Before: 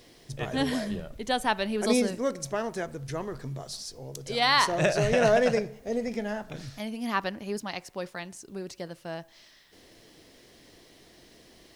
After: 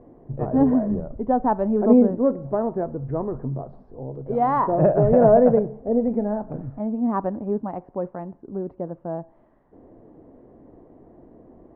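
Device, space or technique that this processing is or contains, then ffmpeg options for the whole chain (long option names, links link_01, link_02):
under water: -af "lowpass=frequency=950:width=0.5412,lowpass=frequency=950:width=1.3066,equalizer=frequency=260:width_type=o:width=0.43:gain=4.5,volume=7.5dB"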